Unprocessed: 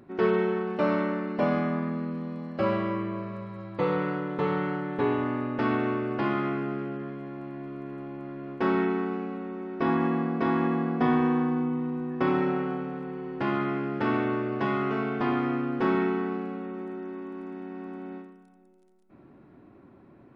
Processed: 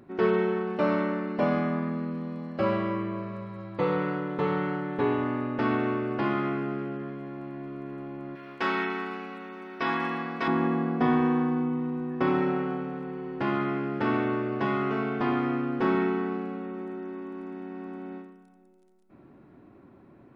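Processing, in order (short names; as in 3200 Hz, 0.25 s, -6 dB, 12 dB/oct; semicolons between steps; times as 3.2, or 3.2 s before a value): 8.35–10.48 tilt shelf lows -9.5 dB, about 910 Hz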